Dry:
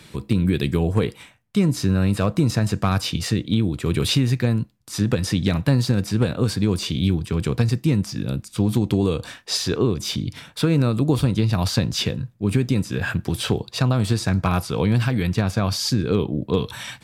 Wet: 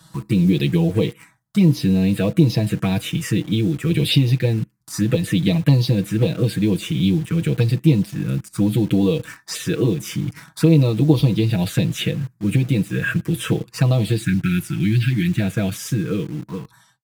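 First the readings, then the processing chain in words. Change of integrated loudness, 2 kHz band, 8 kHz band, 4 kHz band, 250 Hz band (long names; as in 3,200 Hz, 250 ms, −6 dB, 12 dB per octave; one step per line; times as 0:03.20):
+2.5 dB, +2.0 dB, −2.0 dB, −1.0 dB, +3.0 dB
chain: fade-out on the ending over 1.33 s
time-frequency box erased 0:14.17–0:15.40, 370–1,300 Hz
high-pass filter 70 Hz 6 dB per octave
comb filter 6.2 ms, depth 86%
phaser swept by the level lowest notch 390 Hz, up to 1,500 Hz, full sweep at −13.5 dBFS
in parallel at −6 dB: bit-depth reduction 6 bits, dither none
on the sum: level −2 dB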